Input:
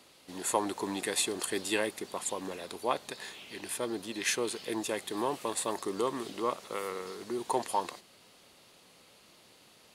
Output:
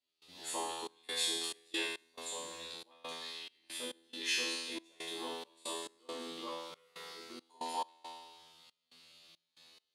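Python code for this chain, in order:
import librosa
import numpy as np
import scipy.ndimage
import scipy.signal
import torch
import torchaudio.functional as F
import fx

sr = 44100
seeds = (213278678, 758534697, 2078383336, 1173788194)

y = fx.peak_eq(x, sr, hz=3700.0, db=12.5, octaves=1.3)
y = fx.comb_fb(y, sr, f0_hz=83.0, decay_s=1.2, harmonics='all', damping=0.0, mix_pct=100)
y = fx.step_gate(y, sr, bpm=69, pattern='.xxx.xx.x', floor_db=-24.0, edge_ms=4.5)
y = F.gain(torch.from_numpy(y), 5.5).numpy()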